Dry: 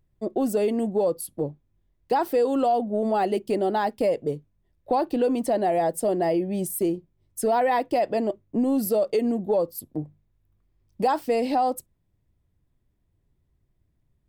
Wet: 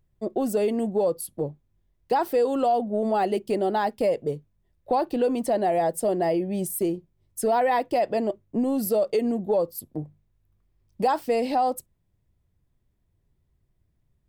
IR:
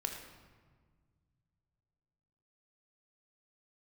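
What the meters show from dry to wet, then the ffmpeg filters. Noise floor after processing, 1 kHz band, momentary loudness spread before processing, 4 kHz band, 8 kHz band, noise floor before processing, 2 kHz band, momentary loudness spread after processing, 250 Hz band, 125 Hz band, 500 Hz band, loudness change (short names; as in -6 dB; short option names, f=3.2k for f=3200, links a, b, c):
-71 dBFS, 0.0 dB, 9 LU, 0.0 dB, 0.0 dB, -71 dBFS, 0.0 dB, 9 LU, -1.5 dB, -0.5 dB, 0.0 dB, -0.5 dB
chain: -af "equalizer=f=290:w=3.9:g=-3.5"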